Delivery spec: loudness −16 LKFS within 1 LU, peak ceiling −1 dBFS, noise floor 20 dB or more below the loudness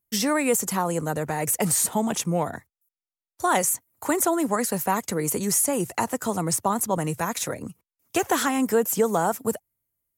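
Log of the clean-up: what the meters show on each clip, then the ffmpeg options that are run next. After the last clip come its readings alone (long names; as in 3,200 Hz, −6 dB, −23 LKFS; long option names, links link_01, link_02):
integrated loudness −24.5 LKFS; sample peak −10.5 dBFS; target loudness −16.0 LKFS
→ -af "volume=8.5dB"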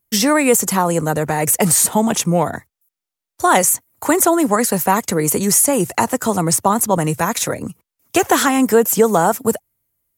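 integrated loudness −16.0 LKFS; sample peak −2.0 dBFS; background noise floor −85 dBFS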